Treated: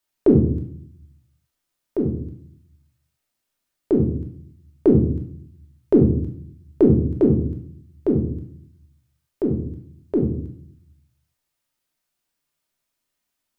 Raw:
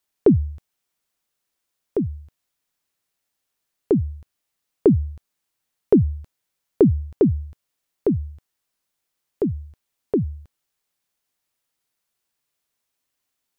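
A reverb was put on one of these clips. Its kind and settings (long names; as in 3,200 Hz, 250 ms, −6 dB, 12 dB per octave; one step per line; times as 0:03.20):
rectangular room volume 870 cubic metres, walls furnished, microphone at 2.7 metres
level −3 dB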